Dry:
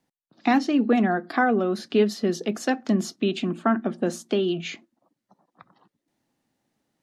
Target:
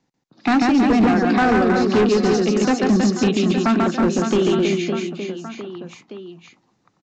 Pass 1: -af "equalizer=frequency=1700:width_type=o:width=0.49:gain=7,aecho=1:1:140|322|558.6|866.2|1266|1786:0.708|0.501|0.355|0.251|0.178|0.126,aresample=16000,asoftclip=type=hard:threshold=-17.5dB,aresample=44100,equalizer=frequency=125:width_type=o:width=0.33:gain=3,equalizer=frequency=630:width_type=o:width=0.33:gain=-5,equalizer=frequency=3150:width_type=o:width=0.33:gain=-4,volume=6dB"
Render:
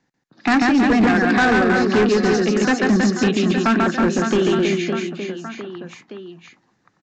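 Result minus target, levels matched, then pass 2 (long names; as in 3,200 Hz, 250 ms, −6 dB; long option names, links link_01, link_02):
2,000 Hz band +5.0 dB
-af "equalizer=frequency=1700:width_type=o:width=0.49:gain=-2.5,aecho=1:1:140|322|558.6|866.2|1266|1786:0.708|0.501|0.355|0.251|0.178|0.126,aresample=16000,asoftclip=type=hard:threshold=-17.5dB,aresample=44100,equalizer=frequency=125:width_type=o:width=0.33:gain=3,equalizer=frequency=630:width_type=o:width=0.33:gain=-5,equalizer=frequency=3150:width_type=o:width=0.33:gain=-4,volume=6dB"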